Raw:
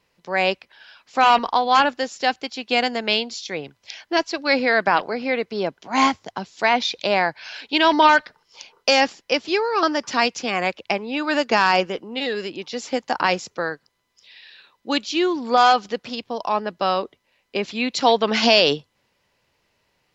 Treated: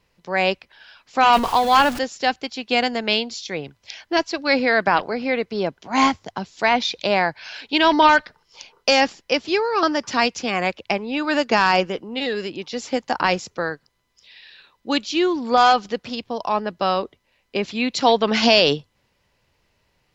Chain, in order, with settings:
0:01.33–0:01.99: converter with a step at zero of −25.5 dBFS
low-shelf EQ 110 Hz +11.5 dB

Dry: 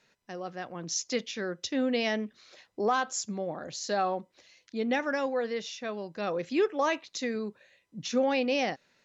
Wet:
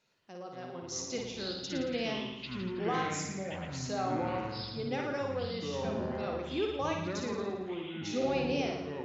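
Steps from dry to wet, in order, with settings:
parametric band 1,800 Hz −9 dB 0.26 octaves
flutter between parallel walls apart 9.7 metres, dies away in 0.82 s
delay with pitch and tempo change per echo 114 ms, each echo −6 semitones, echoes 3
level −7.5 dB

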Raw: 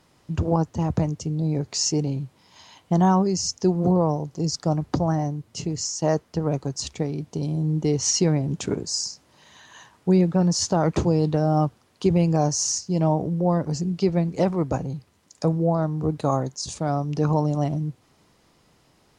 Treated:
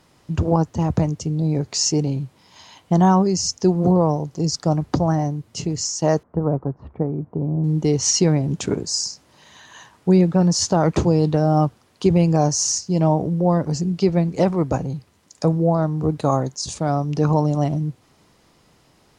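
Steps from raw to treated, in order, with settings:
0:06.23–0:07.64: low-pass filter 1,300 Hz 24 dB per octave
level +3.5 dB

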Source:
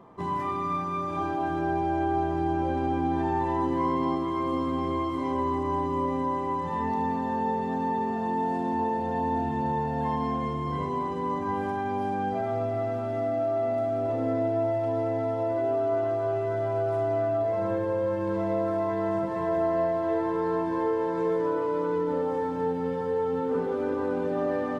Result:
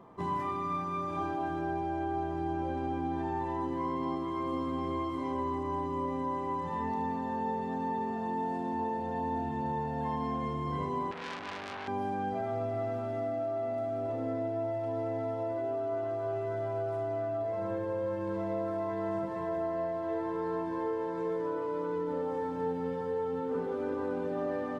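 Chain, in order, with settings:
speech leveller 0.5 s
0:11.11–0:11.88: saturating transformer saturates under 3,100 Hz
level −6 dB

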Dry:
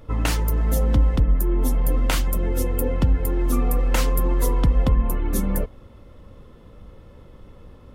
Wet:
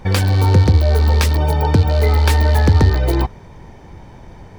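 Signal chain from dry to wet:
loose part that buzzes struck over −19 dBFS, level −24 dBFS
high-shelf EQ 8,100 Hz −9 dB
wrong playback speed 45 rpm record played at 78 rpm
level +6 dB

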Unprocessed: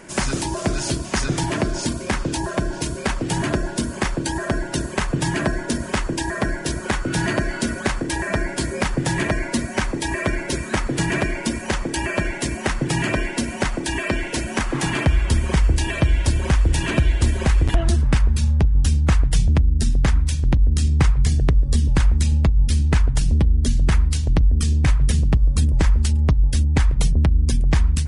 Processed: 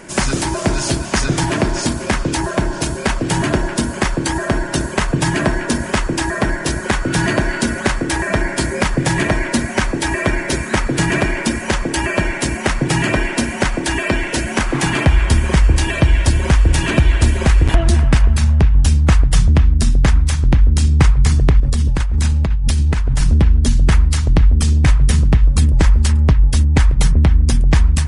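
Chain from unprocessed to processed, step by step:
delay with a band-pass on its return 251 ms, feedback 50%, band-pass 1,400 Hz, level −7.5 dB
0:21.60–0:23.24: compressor whose output falls as the input rises −19 dBFS, ratio −1
level +5 dB

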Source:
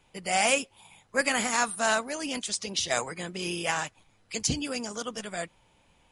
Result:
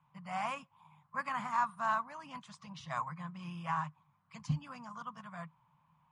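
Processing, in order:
pair of resonant band-passes 400 Hz, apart 2.8 octaves
level +5 dB

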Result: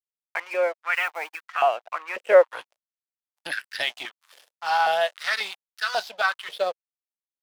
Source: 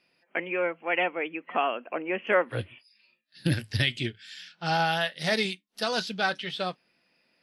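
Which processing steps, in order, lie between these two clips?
0:00.94–0:01.41: one scale factor per block 5 bits
dead-zone distortion −41.5 dBFS
high-pass on a step sequencer 3.7 Hz 530–1,500 Hz

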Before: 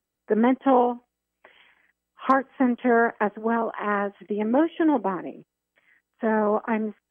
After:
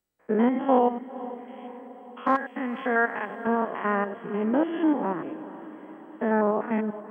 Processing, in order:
spectrum averaged block by block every 100 ms
0:02.35–0:03.47: tilt shelving filter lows −7.5 dB, about 1,200 Hz
feedback delay with all-pass diffusion 475 ms, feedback 60%, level −15.5 dB

